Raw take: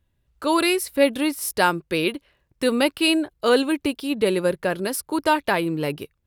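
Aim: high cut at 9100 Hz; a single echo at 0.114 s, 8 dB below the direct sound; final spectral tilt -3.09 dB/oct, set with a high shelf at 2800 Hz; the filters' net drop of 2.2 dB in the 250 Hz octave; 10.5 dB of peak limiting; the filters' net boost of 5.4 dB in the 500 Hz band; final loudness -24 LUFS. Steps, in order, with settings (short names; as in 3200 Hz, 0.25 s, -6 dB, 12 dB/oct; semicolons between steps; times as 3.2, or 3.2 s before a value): LPF 9100 Hz; bell 250 Hz -7 dB; bell 500 Hz +8 dB; high shelf 2800 Hz -4 dB; limiter -13 dBFS; echo 0.114 s -8 dB; gain -0.5 dB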